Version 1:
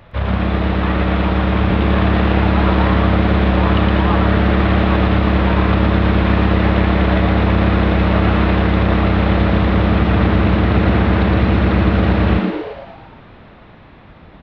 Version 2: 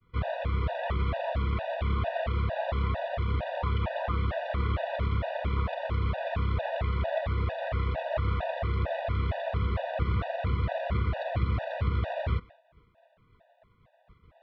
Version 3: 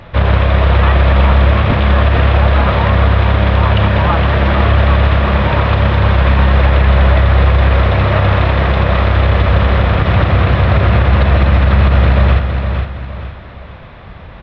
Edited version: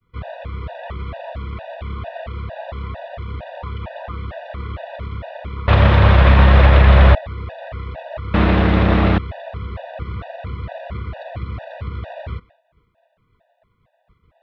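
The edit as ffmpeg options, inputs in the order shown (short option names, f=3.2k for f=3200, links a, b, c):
-filter_complex "[1:a]asplit=3[a][b][c];[a]atrim=end=5.682[d];[2:a]atrim=start=5.678:end=7.152[e];[b]atrim=start=7.148:end=8.342[f];[0:a]atrim=start=8.338:end=9.182[g];[c]atrim=start=9.178[h];[d][e]acrossfade=d=0.004:c1=hsin:c2=hsin[i];[i][f]acrossfade=d=0.004:c1=hsin:c2=hsin[j];[j][g]acrossfade=d=0.004:c1=hsin:c2=hsin[k];[k][h]acrossfade=d=0.004:c1=hsin:c2=hsin"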